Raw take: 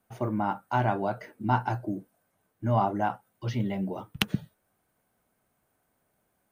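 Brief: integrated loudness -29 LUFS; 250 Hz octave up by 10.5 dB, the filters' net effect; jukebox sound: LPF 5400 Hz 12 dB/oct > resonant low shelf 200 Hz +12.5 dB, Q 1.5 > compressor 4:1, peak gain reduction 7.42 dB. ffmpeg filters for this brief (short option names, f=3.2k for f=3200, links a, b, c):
-af "lowpass=5.4k,lowshelf=f=200:t=q:w=1.5:g=12.5,equalizer=f=250:t=o:g=8,acompressor=threshold=-15dB:ratio=4,volume=-6dB"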